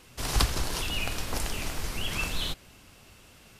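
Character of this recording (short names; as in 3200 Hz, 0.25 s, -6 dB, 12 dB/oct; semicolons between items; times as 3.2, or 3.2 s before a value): noise floor -55 dBFS; spectral tilt -3.5 dB/oct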